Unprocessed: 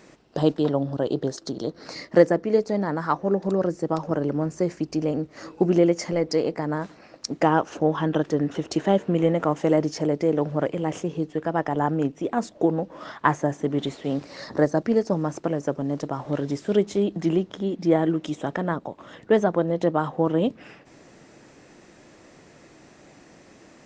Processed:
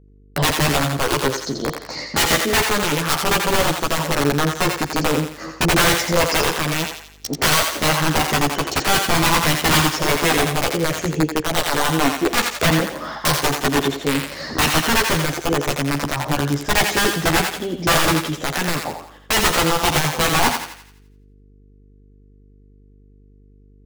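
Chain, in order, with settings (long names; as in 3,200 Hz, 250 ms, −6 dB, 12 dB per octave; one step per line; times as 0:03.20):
noise gate −41 dBFS, range −47 dB
in parallel at −3 dB: output level in coarse steps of 21 dB
on the sum: wrap-around overflow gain 15.5 dB
multi-voice chorus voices 4, 0.3 Hz, delay 13 ms, depth 1.4 ms
hum with harmonics 50 Hz, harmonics 9, −57 dBFS −6 dB per octave
on a send: feedback echo with a high-pass in the loop 85 ms, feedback 46%, high-pass 690 Hz, level −4 dB
on the sum: level +7.5 dB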